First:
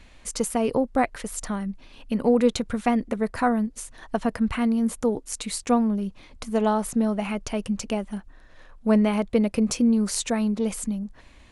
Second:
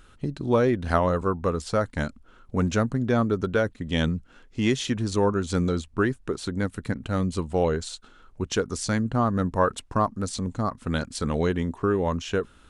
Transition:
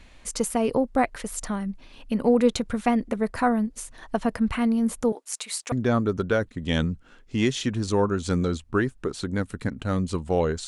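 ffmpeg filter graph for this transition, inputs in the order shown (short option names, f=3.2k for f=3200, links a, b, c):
-filter_complex "[0:a]asettb=1/sr,asplit=3[a][b][c];[a]atrim=end=5.124[d];[b]atrim=start=5.12:end=5.72,asetpts=PTS-STARTPTS,afade=t=in:d=0.004:c=qsin,afade=t=out:st=0.596:d=0.004:c=qsin,highpass=700[e];[c]atrim=start=5.716[f];[d][e]acrossfade=d=0.004:c1=hsin:c2=qsin[g];[g][f]acrossfade=d=0.004:c1=qsin:c2=hsin,apad=whole_dur=10.67,atrim=end=10.67,atrim=end=5.722[h];[1:a]atrim=start=2.958:end=7.91[i];[h][i]acrossfade=d=0.004:c1=hsin:c2=hsin"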